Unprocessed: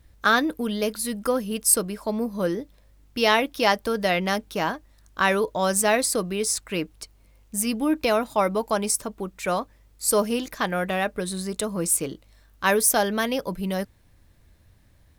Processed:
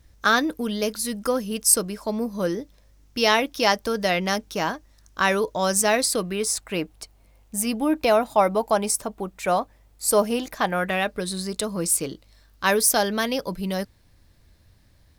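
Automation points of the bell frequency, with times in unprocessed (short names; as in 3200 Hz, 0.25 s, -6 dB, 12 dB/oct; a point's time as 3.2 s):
bell +6.5 dB 0.6 oct
6 s 5800 Hz
6.55 s 740 Hz
10.69 s 740 Hz
11.12 s 4700 Hz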